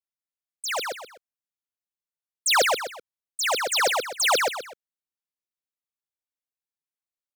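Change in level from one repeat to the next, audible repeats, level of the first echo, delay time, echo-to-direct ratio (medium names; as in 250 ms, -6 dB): -9.5 dB, 3, -3.0 dB, 126 ms, -2.5 dB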